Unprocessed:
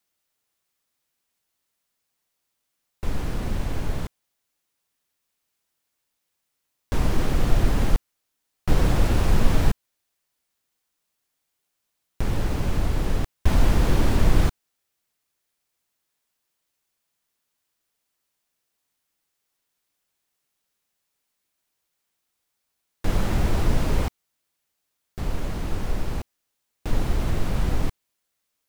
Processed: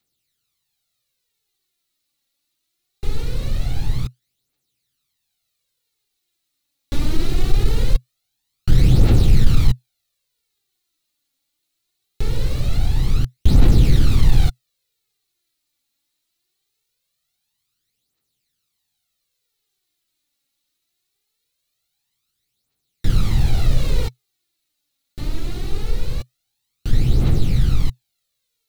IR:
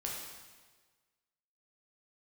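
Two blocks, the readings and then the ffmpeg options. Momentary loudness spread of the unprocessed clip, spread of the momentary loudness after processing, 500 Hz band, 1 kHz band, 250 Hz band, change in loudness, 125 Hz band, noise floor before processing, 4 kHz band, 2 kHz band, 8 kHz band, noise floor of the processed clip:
12 LU, 15 LU, -1.0 dB, -4.5 dB, +2.5 dB, +5.5 dB, +7.0 dB, -79 dBFS, +5.0 dB, -2.0 dB, +1.0 dB, -76 dBFS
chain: -af "equalizer=f=125:t=o:w=0.33:g=9,equalizer=f=630:t=o:w=0.33:g=-8,equalizer=f=1000:t=o:w=0.33:g=-10,equalizer=f=1600:t=o:w=0.33:g=-6,equalizer=f=4000:t=o:w=0.33:g=9,acontrast=67,aphaser=in_gain=1:out_gain=1:delay=3.7:decay=0.59:speed=0.22:type=triangular,volume=0.473"

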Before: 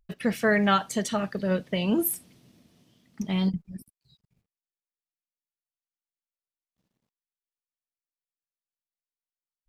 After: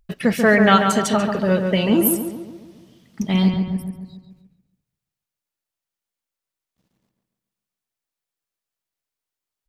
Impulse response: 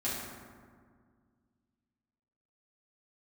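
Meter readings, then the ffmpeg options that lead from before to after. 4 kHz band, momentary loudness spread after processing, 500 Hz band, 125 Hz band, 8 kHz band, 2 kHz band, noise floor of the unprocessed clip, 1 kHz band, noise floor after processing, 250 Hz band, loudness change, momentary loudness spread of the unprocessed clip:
+8.0 dB, 16 LU, +9.0 dB, +9.0 dB, +7.5 dB, +8.5 dB, under -85 dBFS, +9.0 dB, under -85 dBFS, +9.0 dB, +8.5 dB, 14 LU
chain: -filter_complex "[0:a]asplit=2[s0][s1];[s1]adelay=140,lowpass=f=2500:p=1,volume=0.562,asplit=2[s2][s3];[s3]adelay=140,lowpass=f=2500:p=1,volume=0.52,asplit=2[s4][s5];[s5]adelay=140,lowpass=f=2500:p=1,volume=0.52,asplit=2[s6][s7];[s7]adelay=140,lowpass=f=2500:p=1,volume=0.52,asplit=2[s8][s9];[s9]adelay=140,lowpass=f=2500:p=1,volume=0.52,asplit=2[s10][s11];[s11]adelay=140,lowpass=f=2500:p=1,volume=0.52,asplit=2[s12][s13];[s13]adelay=140,lowpass=f=2500:p=1,volume=0.52[s14];[s0][s2][s4][s6][s8][s10][s12][s14]amix=inputs=8:normalize=0,volume=2.37"

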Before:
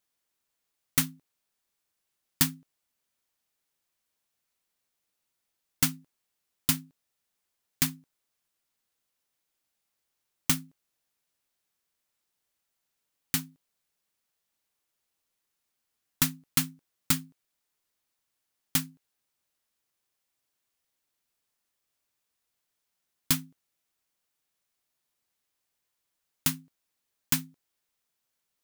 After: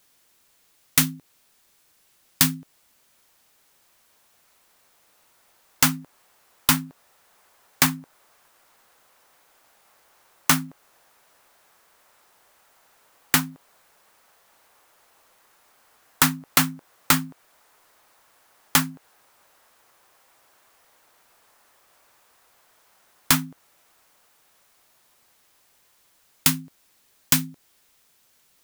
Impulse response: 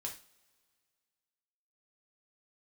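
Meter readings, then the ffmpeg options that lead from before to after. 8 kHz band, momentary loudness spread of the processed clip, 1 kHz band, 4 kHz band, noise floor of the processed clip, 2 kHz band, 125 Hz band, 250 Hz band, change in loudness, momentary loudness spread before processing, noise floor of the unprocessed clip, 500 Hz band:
+7.0 dB, 14 LU, +15.0 dB, +8.0 dB, -63 dBFS, +11.5 dB, +6.5 dB, +7.5 dB, +7.0 dB, 4 LU, -82 dBFS, +12.5 dB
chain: -filter_complex "[0:a]acrossover=split=490|1600[s0][s1][s2];[s1]dynaudnorm=f=610:g=17:m=4.47[s3];[s0][s3][s2]amix=inputs=3:normalize=0,apsyclip=10,acompressor=threshold=0.112:ratio=2.5,volume=0.891"

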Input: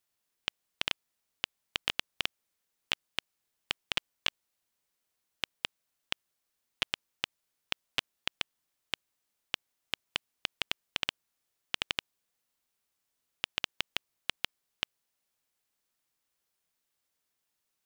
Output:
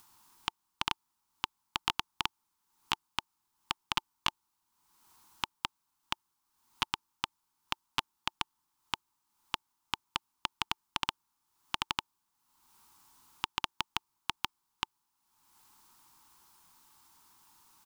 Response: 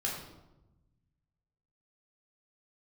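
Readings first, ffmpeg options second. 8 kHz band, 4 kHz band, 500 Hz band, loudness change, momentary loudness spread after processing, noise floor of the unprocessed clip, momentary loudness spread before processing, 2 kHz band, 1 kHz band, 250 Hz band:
+1.0 dB, -1.5 dB, -5.0 dB, -0.5 dB, 6 LU, -83 dBFS, 6 LU, -2.5 dB, +9.5 dB, +3.0 dB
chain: -af "firequalizer=gain_entry='entry(350,0);entry(550,-19);entry(890,11);entry(1800,-7);entry(4900,-2)':delay=0.05:min_phase=1,acompressor=mode=upward:threshold=0.00316:ratio=2.5,volume=1.41"

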